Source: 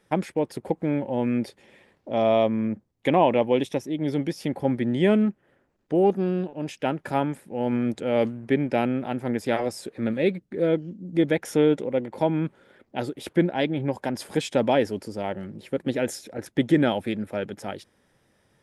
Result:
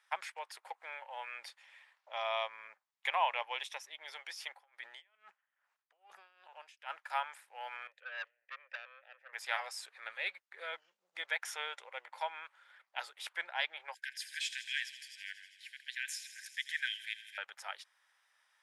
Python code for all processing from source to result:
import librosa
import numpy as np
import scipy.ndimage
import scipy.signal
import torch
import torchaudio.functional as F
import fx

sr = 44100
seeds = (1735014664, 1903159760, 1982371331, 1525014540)

y = fx.chain(x, sr, fx.over_compress(threshold_db=-25.0, ratio=-0.5),
    fx.tremolo_db(hz=2.4, depth_db=22), at=(4.46, 7.1))
y = fx.chain(y, sr, fx.vowel_filter(vowel='e'),
    fx.low_shelf(hz=260.0, db=-7.0),
    fx.transformer_sat(knee_hz=1600.0), at=(7.87, 9.33))
y = fx.chain(y, sr, fx.brickwall_highpass(low_hz=1500.0),
    fx.echo_wet_highpass(ms=82, feedback_pct=81, hz=3000.0, wet_db=-12), at=(13.94, 17.38))
y = scipy.signal.sosfilt(scipy.signal.cheby2(4, 60, 290.0, 'highpass', fs=sr, output='sos'), y)
y = fx.high_shelf(y, sr, hz=8800.0, db=-9.5)
y = y * librosa.db_to_amplitude(-2.0)